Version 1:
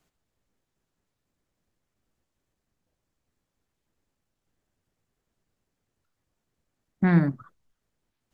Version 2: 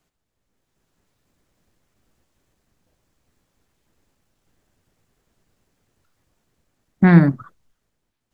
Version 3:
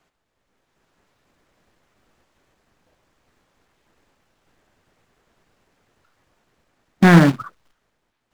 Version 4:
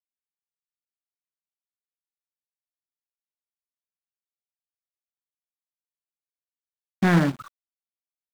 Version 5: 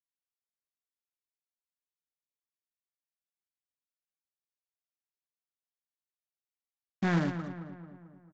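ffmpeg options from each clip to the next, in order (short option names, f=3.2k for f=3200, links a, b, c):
-af "dynaudnorm=f=130:g=11:m=10.5dB,volume=1dB"
-filter_complex "[0:a]lowshelf=f=110:g=4.5,acrusher=bits=4:mode=log:mix=0:aa=0.000001,asplit=2[a][b];[b]highpass=f=720:p=1,volume=15dB,asoftclip=type=tanh:threshold=-1.5dB[c];[a][c]amix=inputs=2:normalize=0,lowpass=f=2k:p=1,volume=-6dB,volume=1dB"
-af "aeval=exprs='val(0)*gte(abs(val(0)),0.015)':c=same,volume=-8.5dB"
-filter_complex "[0:a]asplit=2[a][b];[b]adelay=221,lowpass=f=2.2k:p=1,volume=-10dB,asplit=2[c][d];[d]adelay=221,lowpass=f=2.2k:p=1,volume=0.54,asplit=2[e][f];[f]adelay=221,lowpass=f=2.2k:p=1,volume=0.54,asplit=2[g][h];[h]adelay=221,lowpass=f=2.2k:p=1,volume=0.54,asplit=2[i][j];[j]adelay=221,lowpass=f=2.2k:p=1,volume=0.54,asplit=2[k][l];[l]adelay=221,lowpass=f=2.2k:p=1,volume=0.54[m];[c][e][g][i][k][m]amix=inputs=6:normalize=0[n];[a][n]amix=inputs=2:normalize=0,aresample=16000,aresample=44100,volume=-9dB"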